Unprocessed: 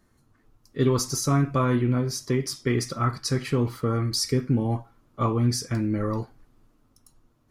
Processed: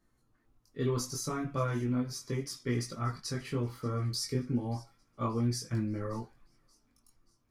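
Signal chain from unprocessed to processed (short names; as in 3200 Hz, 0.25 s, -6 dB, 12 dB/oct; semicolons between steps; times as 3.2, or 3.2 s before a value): thin delay 0.58 s, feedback 47%, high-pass 2500 Hz, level -21.5 dB; chorus voices 6, 0.32 Hz, delay 21 ms, depth 4.1 ms; gain -6 dB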